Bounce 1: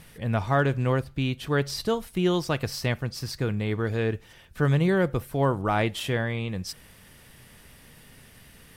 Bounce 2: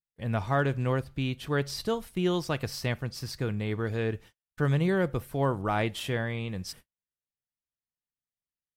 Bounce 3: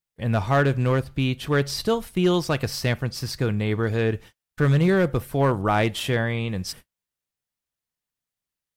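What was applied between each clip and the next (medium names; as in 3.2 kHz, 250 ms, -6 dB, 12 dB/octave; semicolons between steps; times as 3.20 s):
gate -43 dBFS, range -50 dB; trim -3.5 dB
hard clipper -19 dBFS, distortion -20 dB; trim +7 dB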